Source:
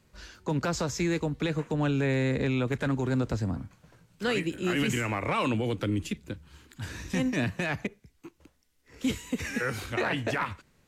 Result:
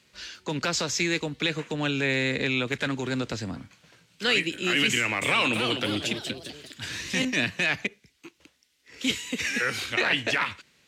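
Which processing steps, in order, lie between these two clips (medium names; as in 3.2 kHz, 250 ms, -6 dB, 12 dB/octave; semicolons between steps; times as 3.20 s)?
frequency weighting D; 4.90–7.25 s: ever faster or slower copies 315 ms, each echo +2 st, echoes 3, each echo -6 dB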